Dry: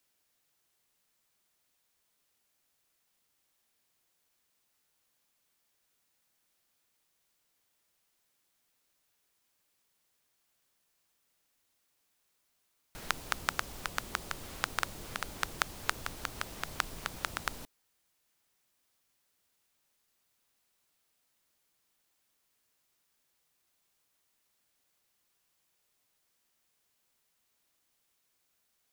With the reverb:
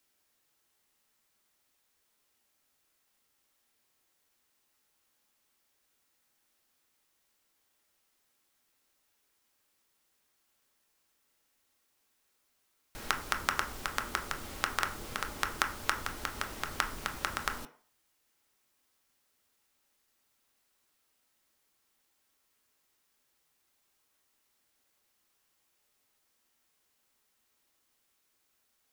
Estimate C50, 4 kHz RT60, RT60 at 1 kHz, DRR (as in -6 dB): 12.5 dB, 0.45 s, 0.50 s, 4.0 dB